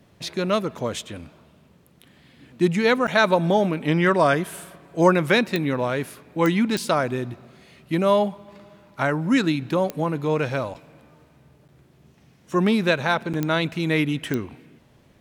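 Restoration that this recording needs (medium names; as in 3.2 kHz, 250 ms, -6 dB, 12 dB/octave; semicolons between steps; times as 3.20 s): de-click; interpolate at 3.07/10.74/11.68/13.33 s, 7.6 ms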